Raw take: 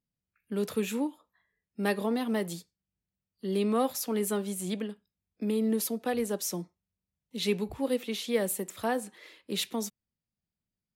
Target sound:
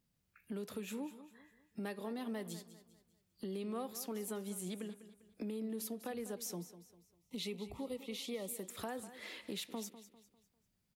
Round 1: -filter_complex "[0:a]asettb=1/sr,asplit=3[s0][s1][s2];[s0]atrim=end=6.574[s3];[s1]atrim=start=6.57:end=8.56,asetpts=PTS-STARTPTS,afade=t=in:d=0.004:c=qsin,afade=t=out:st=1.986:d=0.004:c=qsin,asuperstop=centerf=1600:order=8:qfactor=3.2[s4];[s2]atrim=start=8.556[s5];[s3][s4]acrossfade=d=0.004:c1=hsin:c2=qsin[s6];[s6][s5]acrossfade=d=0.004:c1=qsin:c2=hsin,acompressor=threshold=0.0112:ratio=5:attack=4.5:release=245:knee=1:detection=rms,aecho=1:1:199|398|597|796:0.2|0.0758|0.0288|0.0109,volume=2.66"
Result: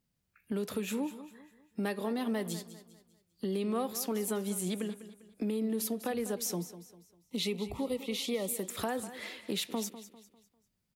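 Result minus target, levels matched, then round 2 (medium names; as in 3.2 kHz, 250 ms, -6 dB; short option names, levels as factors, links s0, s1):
compression: peak gain reduction -8.5 dB
-filter_complex "[0:a]asettb=1/sr,asplit=3[s0][s1][s2];[s0]atrim=end=6.574[s3];[s1]atrim=start=6.57:end=8.56,asetpts=PTS-STARTPTS,afade=t=in:d=0.004:c=qsin,afade=t=out:st=1.986:d=0.004:c=qsin,asuperstop=centerf=1600:order=8:qfactor=3.2[s4];[s2]atrim=start=8.556[s5];[s3][s4]acrossfade=d=0.004:c1=hsin:c2=qsin[s6];[s6][s5]acrossfade=d=0.004:c1=qsin:c2=hsin,acompressor=threshold=0.00335:ratio=5:attack=4.5:release=245:knee=1:detection=rms,aecho=1:1:199|398|597|796:0.2|0.0758|0.0288|0.0109,volume=2.66"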